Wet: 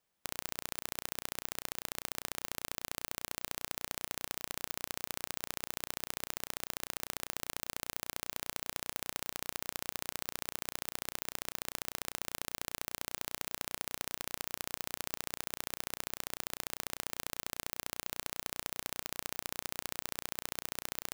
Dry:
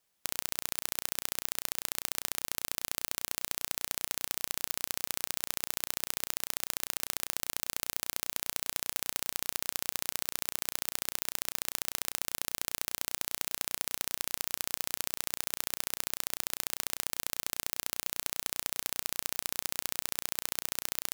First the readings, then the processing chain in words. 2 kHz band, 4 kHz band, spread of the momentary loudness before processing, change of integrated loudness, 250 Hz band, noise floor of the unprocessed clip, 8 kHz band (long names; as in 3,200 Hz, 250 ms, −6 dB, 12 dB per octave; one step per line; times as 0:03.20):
−3.0 dB, −5.5 dB, 0 LU, −6.0 dB, 0.0 dB, −77 dBFS, −7.0 dB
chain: parametric band 14,000 Hz −7.5 dB 2.9 octaves